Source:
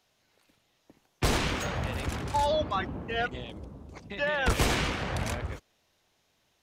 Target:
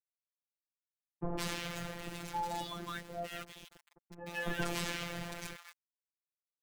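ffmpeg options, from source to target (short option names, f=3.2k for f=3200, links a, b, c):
-filter_complex "[0:a]aeval=exprs='val(0)*gte(abs(val(0)),0.0158)':c=same,acrossover=split=990[a][b];[b]adelay=160[c];[a][c]amix=inputs=2:normalize=0,afftfilt=real='hypot(re,im)*cos(PI*b)':imag='0':win_size=1024:overlap=0.75,volume=-5dB"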